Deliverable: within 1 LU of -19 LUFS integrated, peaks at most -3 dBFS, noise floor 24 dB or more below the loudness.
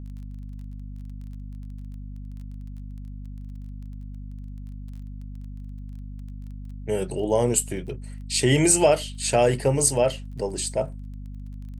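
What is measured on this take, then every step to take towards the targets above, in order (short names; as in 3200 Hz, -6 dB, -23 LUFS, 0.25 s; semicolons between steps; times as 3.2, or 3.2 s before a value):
ticks 19/s; hum 50 Hz; harmonics up to 250 Hz; hum level -34 dBFS; loudness -22.5 LUFS; peak -5.0 dBFS; loudness target -19.0 LUFS
-> de-click; de-hum 50 Hz, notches 5; gain +3.5 dB; limiter -3 dBFS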